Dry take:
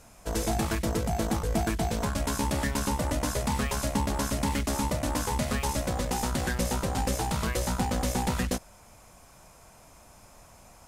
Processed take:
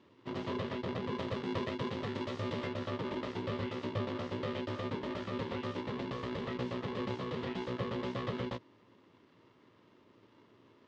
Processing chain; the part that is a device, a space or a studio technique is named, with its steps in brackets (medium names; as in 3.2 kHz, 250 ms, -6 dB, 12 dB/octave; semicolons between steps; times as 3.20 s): ring modulator pedal into a guitar cabinet (polarity switched at an audio rate 310 Hz; cabinet simulation 110–3500 Hz, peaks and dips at 110 Hz +9 dB, 770 Hz -10 dB, 1.5 kHz -9 dB, 2.4 kHz -6 dB); 1.18–2.67 s: treble shelf 4.8 kHz +6.5 dB; trim -7.5 dB